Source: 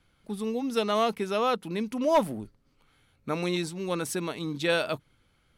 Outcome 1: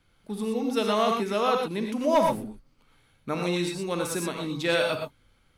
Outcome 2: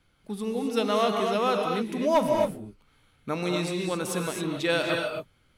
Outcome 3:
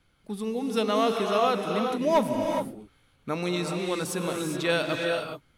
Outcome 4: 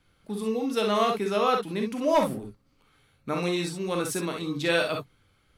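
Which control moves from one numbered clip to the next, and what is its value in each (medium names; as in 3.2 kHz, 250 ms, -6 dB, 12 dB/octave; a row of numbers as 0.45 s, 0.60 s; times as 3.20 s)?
gated-style reverb, gate: 140 ms, 290 ms, 440 ms, 80 ms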